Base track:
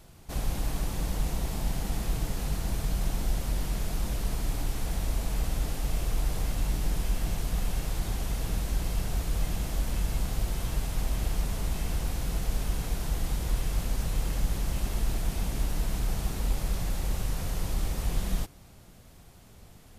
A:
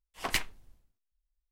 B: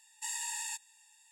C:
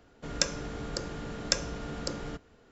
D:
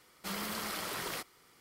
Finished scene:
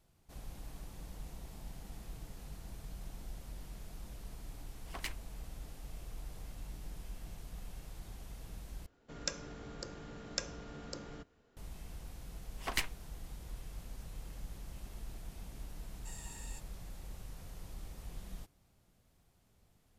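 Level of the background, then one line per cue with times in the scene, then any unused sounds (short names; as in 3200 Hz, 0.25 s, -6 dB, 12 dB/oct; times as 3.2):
base track -17.5 dB
4.7 add A -12 dB
8.86 replace with C -10 dB
12.43 add A -4.5 dB
15.83 add B -14 dB
not used: D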